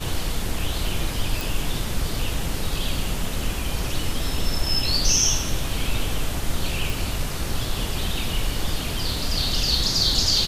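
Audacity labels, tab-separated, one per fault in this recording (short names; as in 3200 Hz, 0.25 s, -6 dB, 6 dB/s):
1.410000	1.410000	pop
6.900000	6.900000	pop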